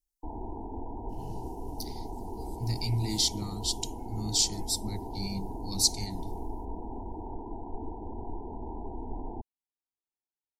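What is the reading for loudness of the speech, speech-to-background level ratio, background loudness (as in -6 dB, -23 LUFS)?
-30.5 LUFS, 10.5 dB, -41.0 LUFS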